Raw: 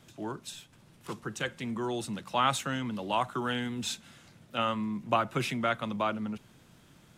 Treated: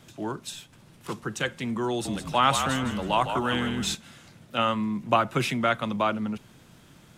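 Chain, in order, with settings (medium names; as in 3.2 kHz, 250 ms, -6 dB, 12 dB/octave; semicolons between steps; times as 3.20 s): 1.89–3.95 s: frequency-shifting echo 159 ms, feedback 34%, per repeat -44 Hz, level -7.5 dB; trim +5 dB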